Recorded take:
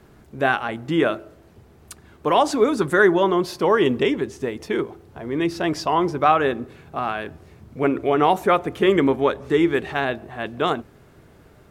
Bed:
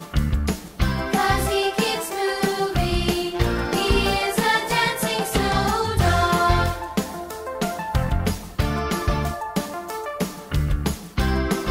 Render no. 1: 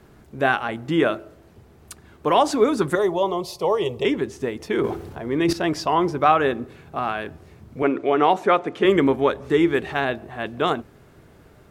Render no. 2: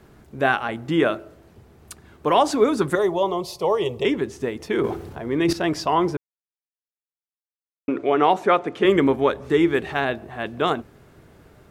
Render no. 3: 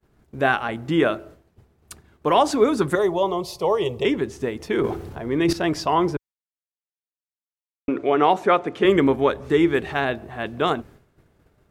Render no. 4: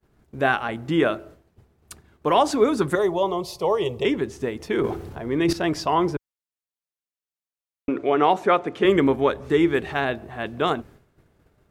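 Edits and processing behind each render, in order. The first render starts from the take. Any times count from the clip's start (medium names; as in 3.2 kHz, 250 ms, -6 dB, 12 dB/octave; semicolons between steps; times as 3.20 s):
2.95–4.05 s: static phaser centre 650 Hz, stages 4; 4.77–5.53 s: transient shaper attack +4 dB, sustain +12 dB; 7.82–8.85 s: band-pass 200–6300 Hz
6.17–7.88 s: mute
expander -41 dBFS; bass shelf 66 Hz +6.5 dB
trim -1 dB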